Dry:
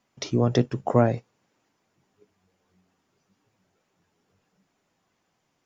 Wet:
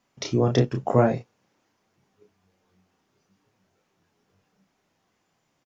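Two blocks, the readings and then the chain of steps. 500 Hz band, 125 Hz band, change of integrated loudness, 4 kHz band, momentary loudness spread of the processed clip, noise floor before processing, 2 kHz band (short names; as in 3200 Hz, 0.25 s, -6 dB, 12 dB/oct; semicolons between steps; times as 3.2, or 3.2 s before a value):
+1.5 dB, +0.5 dB, +1.0 dB, +1.5 dB, 6 LU, -74 dBFS, +1.5 dB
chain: doubler 31 ms -4.5 dB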